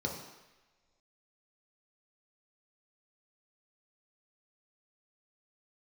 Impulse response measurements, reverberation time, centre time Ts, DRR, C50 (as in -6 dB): no single decay rate, 40 ms, -0.5 dB, 4.5 dB